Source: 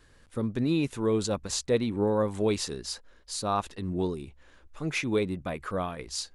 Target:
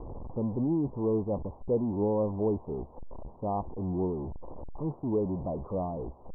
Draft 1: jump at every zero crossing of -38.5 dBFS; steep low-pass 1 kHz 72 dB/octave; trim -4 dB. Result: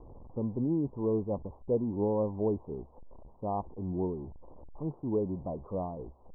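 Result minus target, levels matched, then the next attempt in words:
jump at every zero crossing: distortion -9 dB
jump at every zero crossing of -28 dBFS; steep low-pass 1 kHz 72 dB/octave; trim -4 dB

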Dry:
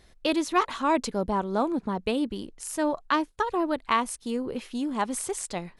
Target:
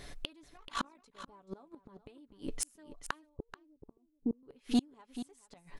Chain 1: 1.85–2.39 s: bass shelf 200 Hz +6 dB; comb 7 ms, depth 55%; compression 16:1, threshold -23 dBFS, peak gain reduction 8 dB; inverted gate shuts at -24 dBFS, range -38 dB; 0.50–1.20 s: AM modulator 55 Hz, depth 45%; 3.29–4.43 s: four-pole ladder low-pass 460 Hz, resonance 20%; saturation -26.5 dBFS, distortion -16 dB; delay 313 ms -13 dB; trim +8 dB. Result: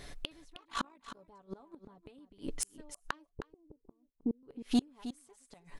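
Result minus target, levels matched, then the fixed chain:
echo 120 ms early
1.85–2.39 s: bass shelf 200 Hz +6 dB; comb 7 ms, depth 55%; compression 16:1, threshold -23 dBFS, peak gain reduction 8 dB; inverted gate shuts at -24 dBFS, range -38 dB; 0.50–1.20 s: AM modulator 55 Hz, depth 45%; 3.29–4.43 s: four-pole ladder low-pass 460 Hz, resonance 20%; saturation -26.5 dBFS, distortion -16 dB; delay 433 ms -13 dB; trim +8 dB

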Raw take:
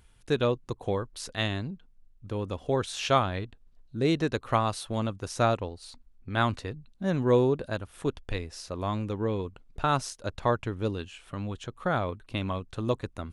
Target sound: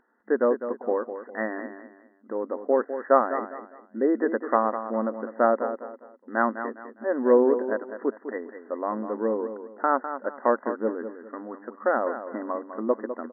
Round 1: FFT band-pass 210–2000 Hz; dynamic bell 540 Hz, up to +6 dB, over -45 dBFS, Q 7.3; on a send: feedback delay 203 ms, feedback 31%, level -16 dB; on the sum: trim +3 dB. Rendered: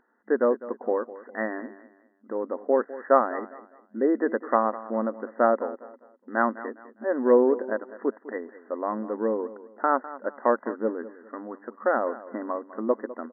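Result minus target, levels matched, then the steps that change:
echo-to-direct -6 dB
change: feedback delay 203 ms, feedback 31%, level -10 dB

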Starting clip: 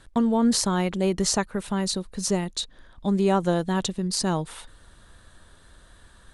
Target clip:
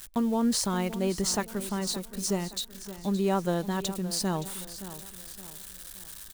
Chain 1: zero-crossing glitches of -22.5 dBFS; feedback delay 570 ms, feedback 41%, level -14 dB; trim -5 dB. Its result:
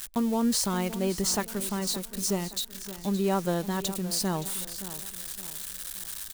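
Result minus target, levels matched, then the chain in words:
zero-crossing glitches: distortion +6 dB
zero-crossing glitches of -29 dBFS; feedback delay 570 ms, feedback 41%, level -14 dB; trim -5 dB

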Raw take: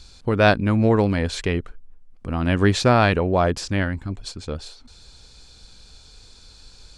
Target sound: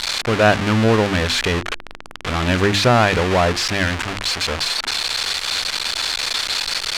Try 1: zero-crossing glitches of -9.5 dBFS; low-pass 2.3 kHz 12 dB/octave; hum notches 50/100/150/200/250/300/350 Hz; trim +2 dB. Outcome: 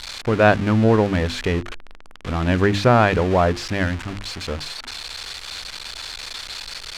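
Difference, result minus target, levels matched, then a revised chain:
zero-crossing glitches: distortion -11 dB
zero-crossing glitches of 1.5 dBFS; low-pass 2.3 kHz 12 dB/octave; hum notches 50/100/150/200/250/300/350 Hz; trim +2 dB

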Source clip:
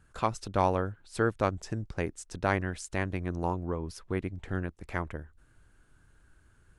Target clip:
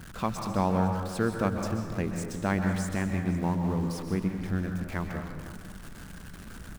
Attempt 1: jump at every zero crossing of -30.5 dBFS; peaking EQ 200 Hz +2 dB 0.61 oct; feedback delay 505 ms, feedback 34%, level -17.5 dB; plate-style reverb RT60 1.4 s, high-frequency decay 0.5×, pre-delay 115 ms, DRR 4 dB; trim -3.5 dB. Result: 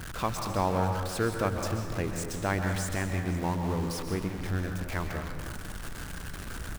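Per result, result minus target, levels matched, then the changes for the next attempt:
jump at every zero crossing: distortion +6 dB; 250 Hz band -2.5 dB
change: jump at every zero crossing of -37.5 dBFS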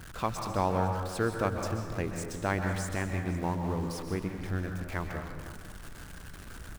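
250 Hz band -3.0 dB
change: peaking EQ 200 Hz +11 dB 0.61 oct

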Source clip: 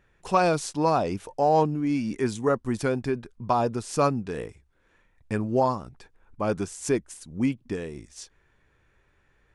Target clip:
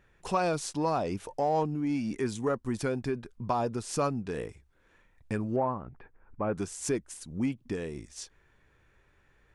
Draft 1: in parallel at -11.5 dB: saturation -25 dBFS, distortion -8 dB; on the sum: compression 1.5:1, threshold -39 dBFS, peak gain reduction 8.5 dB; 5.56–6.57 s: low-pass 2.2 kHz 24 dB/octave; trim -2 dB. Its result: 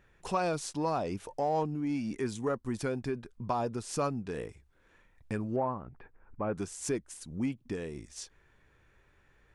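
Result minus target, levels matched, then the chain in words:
compression: peak gain reduction +2.5 dB
in parallel at -11.5 dB: saturation -25 dBFS, distortion -8 dB; on the sum: compression 1.5:1, threshold -31.5 dBFS, peak gain reduction 6 dB; 5.56–6.57 s: low-pass 2.2 kHz 24 dB/octave; trim -2 dB

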